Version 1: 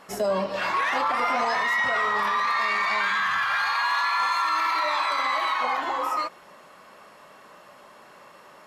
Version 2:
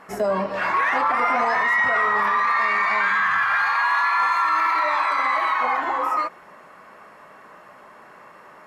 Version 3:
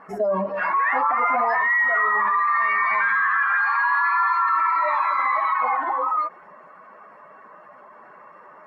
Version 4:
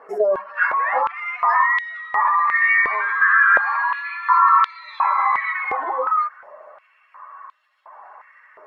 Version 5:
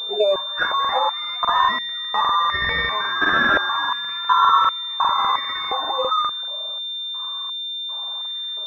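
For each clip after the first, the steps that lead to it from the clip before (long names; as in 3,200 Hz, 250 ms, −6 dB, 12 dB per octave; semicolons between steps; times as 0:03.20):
high shelf with overshoot 2,600 Hz −7 dB, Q 1.5; notch filter 560 Hz, Q 17; level +3 dB
expanding power law on the bin magnitudes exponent 1.6
high-pass on a step sequencer 2.8 Hz 440–3,600 Hz; level −2.5 dB
regular buffer underruns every 0.20 s, samples 2,048, repeat, from 0:00.80; switching amplifier with a slow clock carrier 3,600 Hz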